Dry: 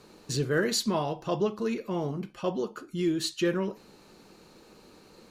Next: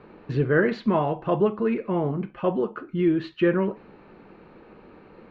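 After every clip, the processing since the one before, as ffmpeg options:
-af "lowpass=f=2.4k:w=0.5412,lowpass=f=2.4k:w=1.3066,volume=6dB"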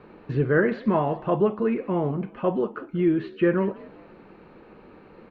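-filter_complex "[0:a]asplit=4[a][b][c][d];[b]adelay=184,afreqshift=55,volume=-22dB[e];[c]adelay=368,afreqshift=110,volume=-29.7dB[f];[d]adelay=552,afreqshift=165,volume=-37.5dB[g];[a][e][f][g]amix=inputs=4:normalize=0,acrossover=split=2900[h][i];[i]acompressor=threshold=-59dB:ratio=4:attack=1:release=60[j];[h][j]amix=inputs=2:normalize=0"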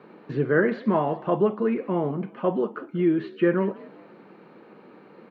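-af "highpass=f=150:w=0.5412,highpass=f=150:w=1.3066,bandreject=f=2.6k:w=23"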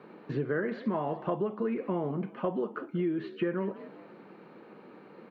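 -af "acompressor=threshold=-25dB:ratio=6,volume=-2dB"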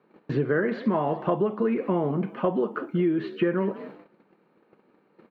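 -af "agate=range=-19dB:threshold=-47dB:ratio=16:detection=peak,volume=6.5dB"

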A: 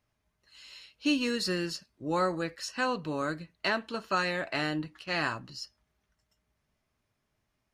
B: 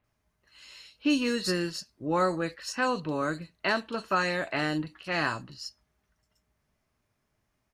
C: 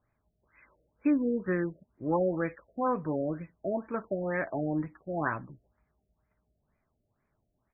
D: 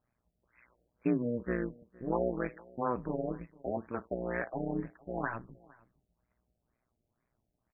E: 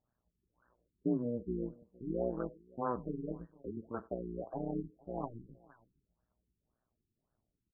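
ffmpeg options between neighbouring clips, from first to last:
-filter_complex "[0:a]acrossover=split=3500[a][b];[b]adelay=40[c];[a][c]amix=inputs=2:normalize=0,volume=2.5dB"
-af "afftfilt=real='re*lt(b*sr/1024,700*pow(2600/700,0.5+0.5*sin(2*PI*2.1*pts/sr)))':imag='im*lt(b*sr/1024,700*pow(2600/700,0.5+0.5*sin(2*PI*2.1*pts/sr)))':win_size=1024:overlap=0.75"
-filter_complex "[0:a]tremolo=f=120:d=0.919,asplit=2[a][b];[b]adelay=460.6,volume=-24dB,highshelf=f=4k:g=-10.4[c];[a][c]amix=inputs=2:normalize=0"
-filter_complex "[0:a]asplit=2[a][b];[b]adelay=90,highpass=300,lowpass=3.4k,asoftclip=type=hard:threshold=-27.5dB,volume=-23dB[c];[a][c]amix=inputs=2:normalize=0,afftfilt=real='re*lt(b*sr/1024,400*pow(1900/400,0.5+0.5*sin(2*PI*1.8*pts/sr)))':imag='im*lt(b*sr/1024,400*pow(1900/400,0.5+0.5*sin(2*PI*1.8*pts/sr)))':win_size=1024:overlap=0.75,volume=-3dB"

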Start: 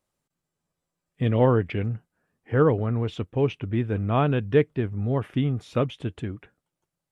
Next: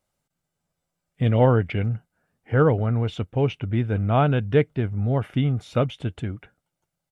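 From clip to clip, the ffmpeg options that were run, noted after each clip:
-af "aecho=1:1:1.4:0.31,volume=2dB"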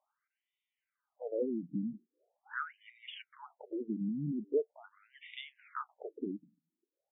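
-af "acompressor=threshold=-26dB:ratio=10,afftfilt=real='re*between(b*sr/1024,220*pow(2700/220,0.5+0.5*sin(2*PI*0.42*pts/sr))/1.41,220*pow(2700/220,0.5+0.5*sin(2*PI*0.42*pts/sr))*1.41)':imag='im*between(b*sr/1024,220*pow(2700/220,0.5+0.5*sin(2*PI*0.42*pts/sr))/1.41,220*pow(2700/220,0.5+0.5*sin(2*PI*0.42*pts/sr))*1.41)':win_size=1024:overlap=0.75,volume=2dB"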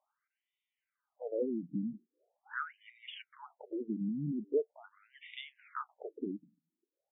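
-af anull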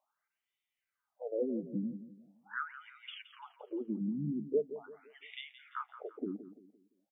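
-af "aecho=1:1:171|342|513|684:0.224|0.0828|0.0306|0.0113"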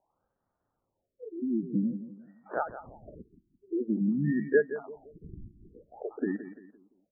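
-af "acrusher=samples=21:mix=1:aa=0.000001,afftfilt=real='re*lt(b*sr/1024,360*pow(2300/360,0.5+0.5*sin(2*PI*0.5*pts/sr)))':imag='im*lt(b*sr/1024,360*pow(2300/360,0.5+0.5*sin(2*PI*0.5*pts/sr)))':win_size=1024:overlap=0.75,volume=8dB"

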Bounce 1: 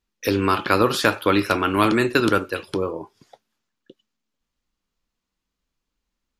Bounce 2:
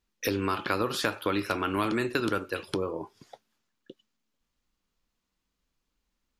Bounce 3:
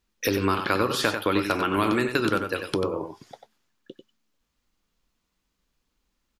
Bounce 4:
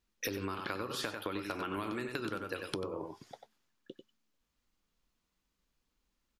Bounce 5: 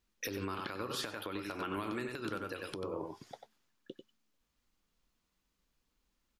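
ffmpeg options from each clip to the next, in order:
-af "acompressor=threshold=-29dB:ratio=2.5"
-filter_complex "[0:a]asplit=2[a][b];[b]adelay=93.29,volume=-7dB,highshelf=f=4k:g=-2.1[c];[a][c]amix=inputs=2:normalize=0,volume=4dB"
-af "acompressor=threshold=-28dB:ratio=10,volume=-5.5dB"
-af "alimiter=level_in=4dB:limit=-24dB:level=0:latency=1:release=157,volume=-4dB,volume=1dB"

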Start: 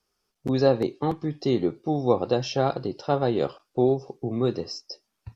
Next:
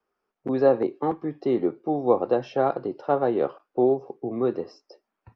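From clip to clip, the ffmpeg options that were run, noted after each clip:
-filter_complex "[0:a]acrossover=split=230 2200:gain=0.2 1 0.0794[a][b][c];[a][b][c]amix=inputs=3:normalize=0,volume=2dB"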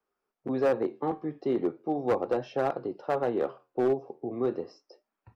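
-af "flanger=delay=7:depth=5.4:regen=-77:speed=0.38:shape=sinusoidal,asoftclip=type=hard:threshold=-19.5dB"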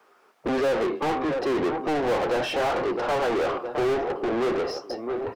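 -filter_complex "[0:a]aecho=1:1:663|1326|1989:0.1|0.041|0.0168,asplit=2[a][b];[b]highpass=f=720:p=1,volume=35dB,asoftclip=type=tanh:threshold=-18.5dB[c];[a][c]amix=inputs=2:normalize=0,lowpass=f=2.7k:p=1,volume=-6dB"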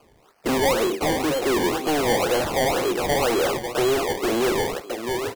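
-af "acrusher=samples=23:mix=1:aa=0.000001:lfo=1:lforange=23:lforate=2,volume=3dB"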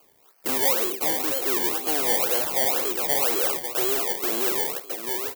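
-af "aemphasis=mode=production:type=bsi,volume=-6dB"

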